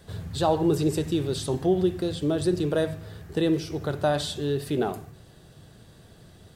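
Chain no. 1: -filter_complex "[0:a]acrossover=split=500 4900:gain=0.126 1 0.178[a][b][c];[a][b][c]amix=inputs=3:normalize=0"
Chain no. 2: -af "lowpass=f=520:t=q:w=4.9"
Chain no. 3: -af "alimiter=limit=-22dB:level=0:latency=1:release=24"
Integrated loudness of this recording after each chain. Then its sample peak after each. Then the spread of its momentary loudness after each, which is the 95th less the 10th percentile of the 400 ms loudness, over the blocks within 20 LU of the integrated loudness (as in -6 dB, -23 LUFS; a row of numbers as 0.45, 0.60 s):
-33.0, -20.0, -31.0 LUFS; -13.5, -5.0, -22.0 dBFS; 9, 8, 10 LU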